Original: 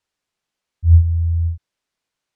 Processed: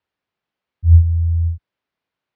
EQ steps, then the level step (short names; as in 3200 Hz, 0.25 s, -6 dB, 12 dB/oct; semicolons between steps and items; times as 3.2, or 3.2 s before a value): HPF 56 Hz; air absorption 250 m; +2.0 dB